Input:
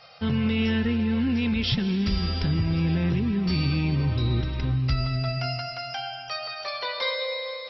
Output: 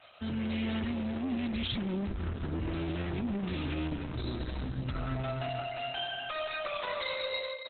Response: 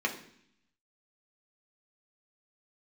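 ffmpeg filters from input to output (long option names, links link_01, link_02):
-filter_complex "[0:a]highpass=frequency=41:poles=1,asettb=1/sr,asplit=3[link_01][link_02][link_03];[link_01]atrim=end=3.554[link_04];[link_02]atrim=start=3.55:end=4.26,asetpts=PTS-STARTPTS,afade=type=in:duration=0.004:curve=qsin,afade=type=out:start_time=0.706:duration=0.004:curve=qsin,asubboost=boost=8.5:cutoff=92[link_05];[link_03]atrim=start=4.256[link_06];[link_04][link_05]acrossfade=duration=0.004:curve1=hsin:curve2=qsin[link_07];[link_07][link_06]acrossfade=duration=0.004:curve1=qsin:curve2=hsin,aecho=1:1:3.2:0.68,asettb=1/sr,asplit=3[link_08][link_09][link_10];[link_08]atrim=end=5.394[link_11];[link_09]atrim=start=5.39:end=5.8,asetpts=PTS-STARTPTS,afade=type=in:duration=0.004:curve=qsin,afade=type=out:start_time=0.406:duration=0.004:curve=qsin,adynamicequalizer=threshold=0.00251:dfrequency=2400:dqfactor=4.3:tfrequency=2400:tqfactor=4.3:attack=5:release=100:ratio=0.375:range=1.5:mode=cutabove:tftype=bell[link_12];[link_10]atrim=start=5.796[link_13];[link_11][link_12]acrossfade=duration=0.004:curve1=hsin:curve2=qsin[link_14];[link_14][link_13]acrossfade=duration=0.004:curve1=qsin:curve2=hsin,alimiter=limit=-21.5dB:level=0:latency=1:release=19,dynaudnorm=framelen=120:gausssize=7:maxgain=7.5dB,asoftclip=type=tanh:threshold=-24dB,asplit=3[link_15][link_16][link_17];[link_15]afade=type=out:start_time=1.77:duration=0.02[link_18];[link_16]adynamicsmooth=sensitivity=2.5:basefreq=1300,afade=type=in:start_time=1.77:duration=0.02,afade=type=out:start_time=2.58:duration=0.02[link_19];[link_17]afade=type=in:start_time=2.58:duration=0.02[link_20];[link_18][link_19][link_20]amix=inputs=3:normalize=0,asplit=2[link_21][link_22];[link_22]adelay=495.6,volume=-26dB,highshelf=frequency=4000:gain=-11.2[link_23];[link_21][link_23]amix=inputs=2:normalize=0,aresample=32000,aresample=44100,volume=-5dB" -ar 48000 -c:a libopus -b:a 8k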